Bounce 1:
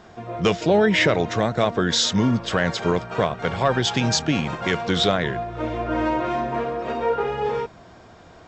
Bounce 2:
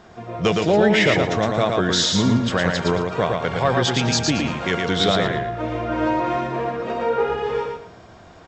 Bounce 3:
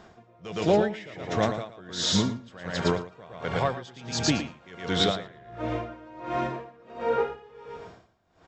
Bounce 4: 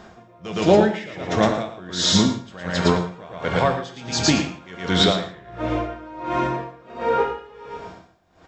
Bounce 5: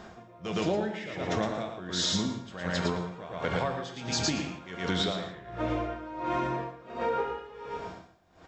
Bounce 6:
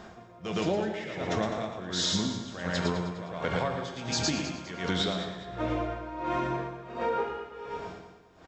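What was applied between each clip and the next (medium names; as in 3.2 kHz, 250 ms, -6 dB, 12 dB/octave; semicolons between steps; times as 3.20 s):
feedback delay 113 ms, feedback 27%, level -3.5 dB
logarithmic tremolo 1.4 Hz, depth 24 dB; trim -3 dB
gated-style reverb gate 200 ms falling, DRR 6 dB; trim +6 dB
compression 5:1, threshold -24 dBFS, peak gain reduction 13 dB; trim -2.5 dB
feedback delay 204 ms, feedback 36%, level -12 dB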